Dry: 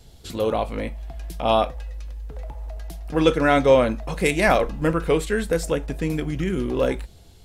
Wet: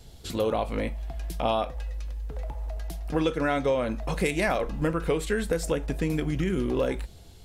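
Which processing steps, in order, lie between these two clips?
compression 6:1, threshold -22 dBFS, peak gain reduction 11.5 dB

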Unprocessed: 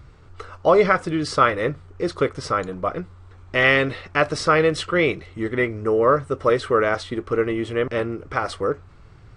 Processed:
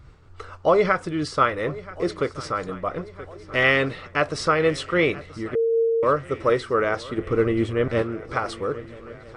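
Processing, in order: 7.18–8.02 s: bass shelf 330 Hz +8.5 dB; shuffle delay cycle 1305 ms, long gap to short 3:1, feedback 53%, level -19.5 dB; 5.55–6.03 s: bleep 457 Hz -14 dBFS; random flutter of the level, depth 55%

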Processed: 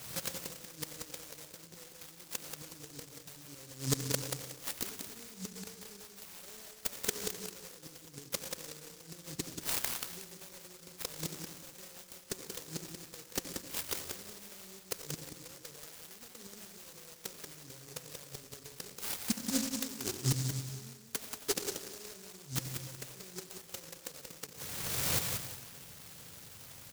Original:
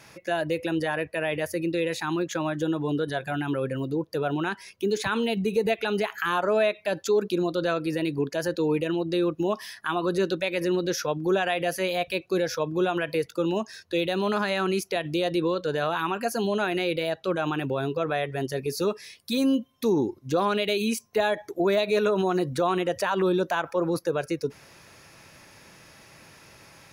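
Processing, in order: recorder AGC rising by 25 dB/s; high-pass 53 Hz 24 dB/octave; peaking EQ 240 Hz -5 dB 1 oct; compression 6:1, threshold -26 dBFS, peak gain reduction 7 dB; resonant low-pass 2.3 kHz, resonance Q 1.7; inverted gate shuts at -22 dBFS, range -26 dB; comb of notches 340 Hz; feedback delay 183 ms, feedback 26%, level -6 dB; reverberation RT60 1.2 s, pre-delay 63 ms, DRR 8 dB; delay time shaken by noise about 6 kHz, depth 0.41 ms; trim +4 dB

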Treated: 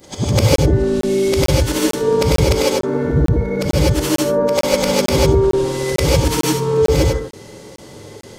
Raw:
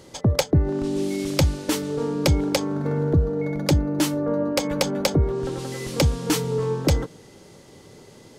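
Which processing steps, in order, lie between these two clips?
short-time spectra conjugated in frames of 195 ms; in parallel at -3 dB: compression, threshold -32 dBFS, peak gain reduction 13.5 dB; on the sum: gated-style reverb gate 180 ms rising, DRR -4.5 dB; crackling interface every 0.45 s, samples 1024, zero, from 0.56 s; trim +3 dB

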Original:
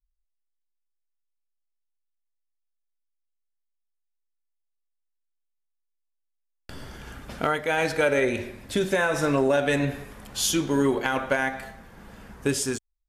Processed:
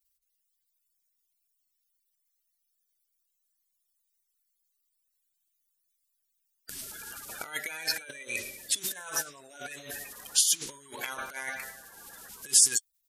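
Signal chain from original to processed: coarse spectral quantiser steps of 30 dB; compressor with a negative ratio -29 dBFS, ratio -0.5; pre-emphasis filter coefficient 0.97; trim +7.5 dB

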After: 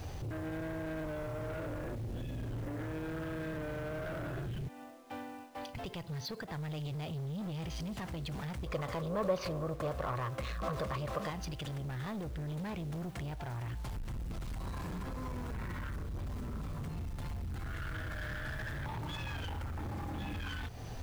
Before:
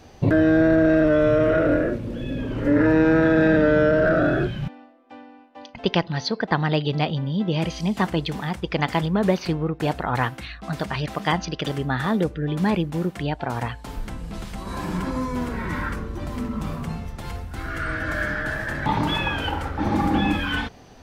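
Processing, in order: resonant low shelf 160 Hz +8 dB, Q 1.5; compression 6:1, threshold -30 dBFS, peak gain reduction 19.5 dB; peak limiter -28.5 dBFS, peak gain reduction 10.5 dB; saturation -38 dBFS, distortion -11 dB; companded quantiser 6-bit; 8.66–11.30 s: small resonant body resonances 550/1100 Hz, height 16 dB, ringing for 25 ms; trim +2 dB

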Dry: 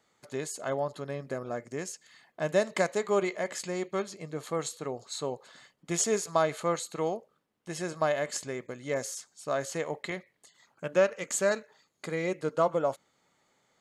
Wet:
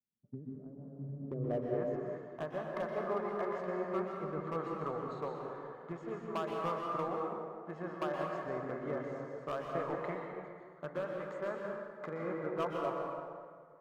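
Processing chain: compression 8:1, threshold -38 dBFS, peak gain reduction 18.5 dB; low-pass sweep 220 Hz -> 1.2 kHz, 1.14–1.84 s; overload inside the chain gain 31.5 dB; plate-style reverb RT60 3.1 s, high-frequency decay 0.5×, pre-delay 110 ms, DRR -2 dB; three bands expanded up and down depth 70%

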